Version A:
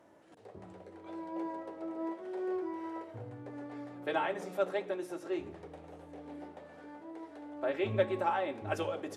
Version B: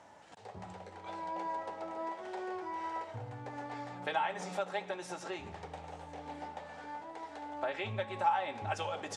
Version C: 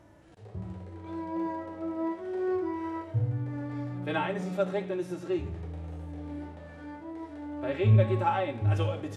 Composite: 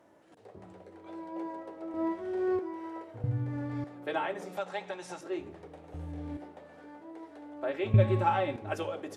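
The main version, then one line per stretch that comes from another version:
A
1.94–2.59 s: from C
3.24–3.84 s: from C
4.57–5.21 s: from B
5.94–6.37 s: from C
7.94–8.56 s: from C

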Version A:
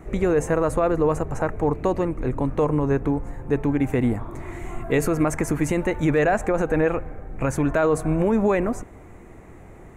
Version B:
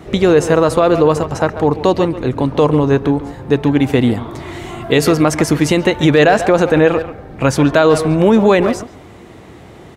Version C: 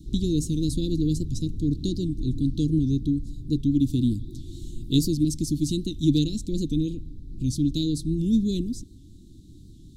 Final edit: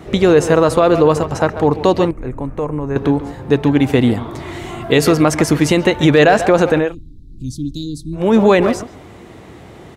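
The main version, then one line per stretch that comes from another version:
B
2.11–2.96 s: from A
6.83–8.24 s: from C, crossfade 0.24 s

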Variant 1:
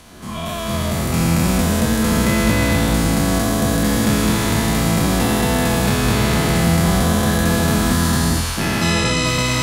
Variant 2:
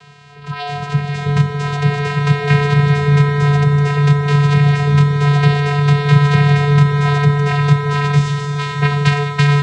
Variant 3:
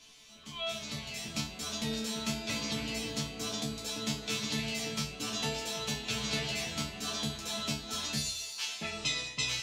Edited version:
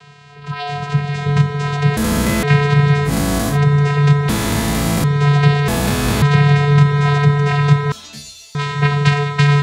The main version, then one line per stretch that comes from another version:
2
1.97–2.43 s: from 1
3.09–3.53 s: from 1, crossfade 0.10 s
4.29–5.04 s: from 1
5.68–6.22 s: from 1
7.92–8.55 s: from 3

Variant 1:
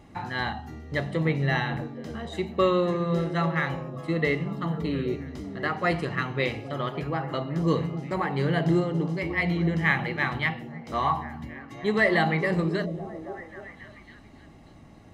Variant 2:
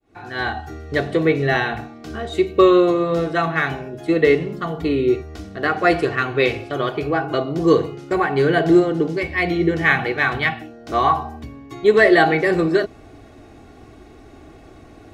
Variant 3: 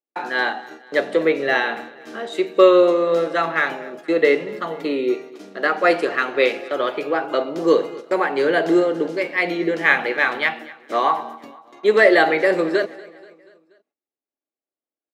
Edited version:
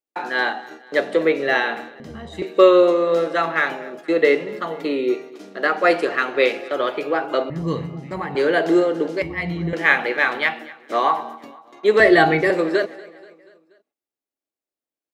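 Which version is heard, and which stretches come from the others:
3
2.00–2.42 s: from 1
7.50–8.35 s: from 1
9.22–9.73 s: from 1
12.00–12.50 s: from 2

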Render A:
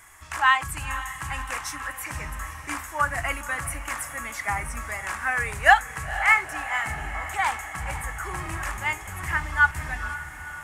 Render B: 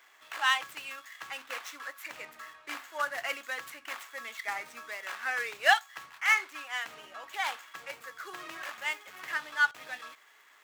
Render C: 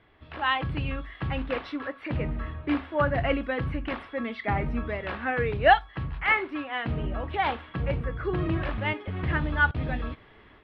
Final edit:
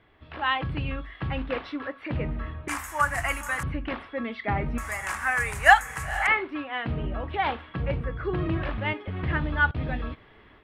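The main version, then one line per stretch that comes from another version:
C
2.68–3.63 s: from A
4.78–6.27 s: from A
not used: B

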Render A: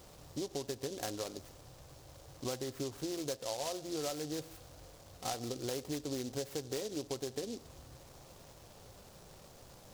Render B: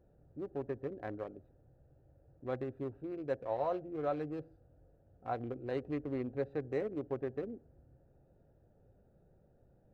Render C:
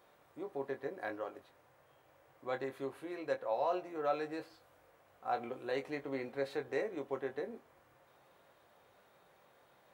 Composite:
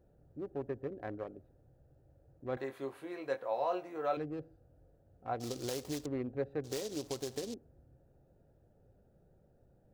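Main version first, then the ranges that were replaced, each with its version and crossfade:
B
2.57–4.17 s: from C
5.40–6.06 s: from A
6.64–7.54 s: from A

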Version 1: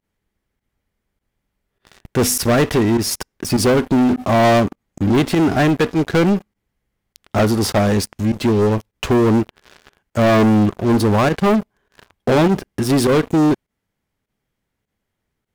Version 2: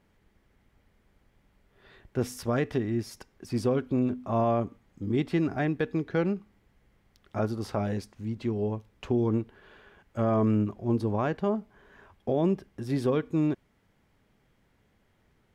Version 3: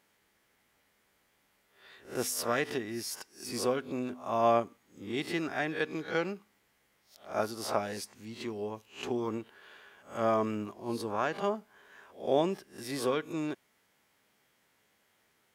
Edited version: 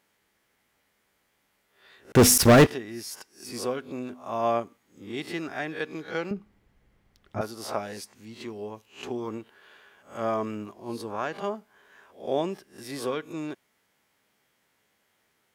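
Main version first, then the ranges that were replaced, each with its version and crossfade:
3
2.12–2.67 s: from 1
6.31–7.41 s: from 2

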